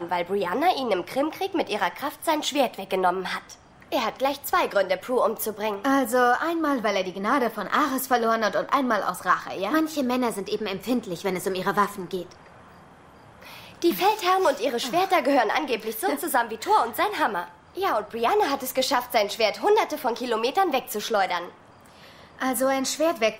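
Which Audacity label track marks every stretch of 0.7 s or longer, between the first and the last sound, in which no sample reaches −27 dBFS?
12.220000	13.820000	silence
21.440000	22.410000	silence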